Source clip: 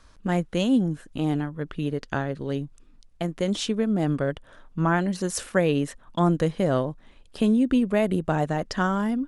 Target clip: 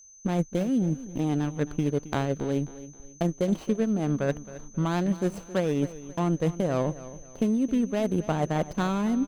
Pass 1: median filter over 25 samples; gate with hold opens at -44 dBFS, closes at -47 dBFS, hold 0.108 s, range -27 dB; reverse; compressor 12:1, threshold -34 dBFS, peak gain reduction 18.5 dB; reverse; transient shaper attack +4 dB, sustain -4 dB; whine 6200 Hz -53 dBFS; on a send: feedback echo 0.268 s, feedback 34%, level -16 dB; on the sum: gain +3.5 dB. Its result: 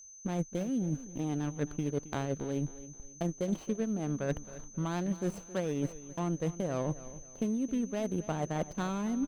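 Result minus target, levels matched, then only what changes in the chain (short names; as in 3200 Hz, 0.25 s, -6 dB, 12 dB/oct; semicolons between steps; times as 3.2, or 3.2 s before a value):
compressor: peak gain reduction +7.5 dB
change: compressor 12:1, threshold -26 dBFS, peak gain reduction 11 dB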